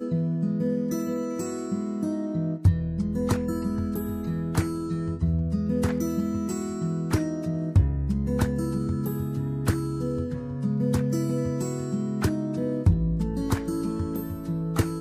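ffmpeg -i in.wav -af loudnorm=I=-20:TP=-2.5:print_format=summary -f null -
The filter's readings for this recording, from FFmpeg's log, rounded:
Input Integrated:    -27.3 LUFS
Input True Peak:     -10.3 dBTP
Input LRA:             1.0 LU
Input Threshold:     -37.3 LUFS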